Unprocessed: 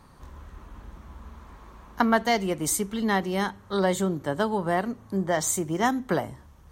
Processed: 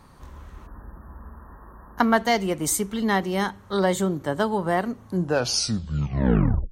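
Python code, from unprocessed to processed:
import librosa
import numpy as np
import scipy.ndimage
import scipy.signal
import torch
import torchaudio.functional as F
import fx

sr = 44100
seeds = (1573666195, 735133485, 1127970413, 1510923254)

y = fx.tape_stop_end(x, sr, length_s=1.64)
y = fx.spec_erase(y, sr, start_s=0.67, length_s=1.31, low_hz=1900.0, high_hz=10000.0)
y = y * 10.0 ** (2.0 / 20.0)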